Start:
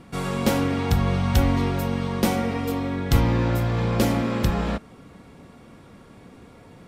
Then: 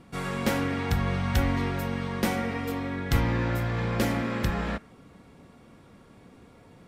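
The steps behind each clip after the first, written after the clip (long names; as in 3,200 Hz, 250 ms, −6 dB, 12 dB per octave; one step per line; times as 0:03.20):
dynamic equaliser 1,800 Hz, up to +7 dB, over −46 dBFS, Q 1.6
level −5.5 dB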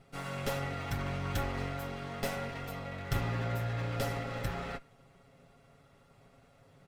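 lower of the sound and its delayed copy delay 1.5 ms
comb filter 7.3 ms
level −8 dB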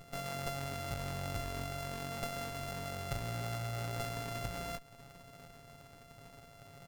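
samples sorted by size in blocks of 64 samples
downward compressor 3 to 1, threshold −46 dBFS, peak gain reduction 14 dB
level +6 dB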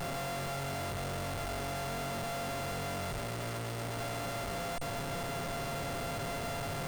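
sign of each sample alone
mains-hum notches 60/120 Hz
steady tone 8,600 Hz −61 dBFS
level +4.5 dB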